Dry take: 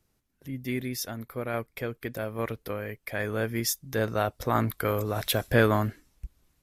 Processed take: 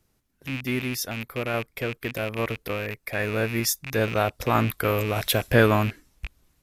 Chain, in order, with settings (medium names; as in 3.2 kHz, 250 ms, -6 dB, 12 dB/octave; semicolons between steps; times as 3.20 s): rattle on loud lows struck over -39 dBFS, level -25 dBFS; 2.82–4.01 s: band-stop 3.1 kHz, Q 7.5; trim +3.5 dB